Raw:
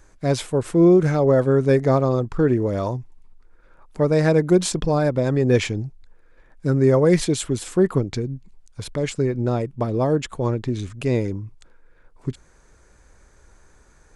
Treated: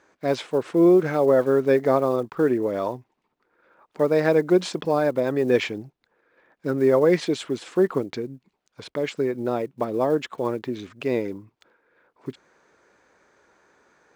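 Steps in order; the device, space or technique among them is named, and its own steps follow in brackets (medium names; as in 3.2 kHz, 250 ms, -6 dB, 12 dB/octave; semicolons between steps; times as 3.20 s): early digital voice recorder (band-pass 280–3900 Hz; block-companded coder 7-bit)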